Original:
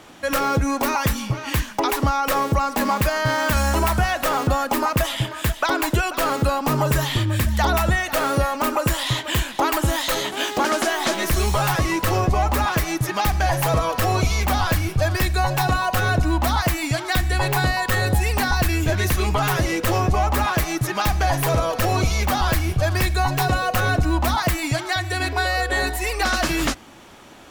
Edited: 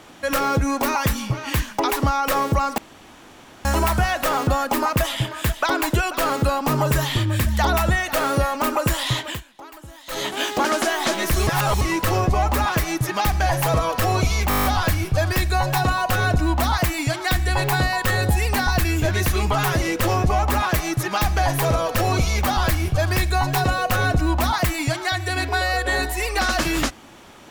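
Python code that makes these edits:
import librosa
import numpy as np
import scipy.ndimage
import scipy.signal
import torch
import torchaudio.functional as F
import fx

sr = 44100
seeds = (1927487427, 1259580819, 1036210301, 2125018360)

y = fx.edit(x, sr, fx.room_tone_fill(start_s=2.78, length_s=0.87),
    fx.fade_down_up(start_s=9.23, length_s=1.01, db=-20.5, fade_s=0.18),
    fx.reverse_span(start_s=11.47, length_s=0.34),
    fx.stutter(start_s=14.49, slice_s=0.02, count=9), tone=tone)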